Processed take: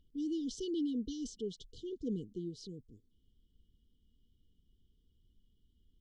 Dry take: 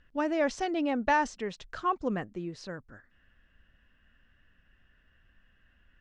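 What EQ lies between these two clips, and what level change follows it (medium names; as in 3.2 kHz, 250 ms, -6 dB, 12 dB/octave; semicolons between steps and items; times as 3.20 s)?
brick-wall FIR band-stop 490–2900 Hz; -4.0 dB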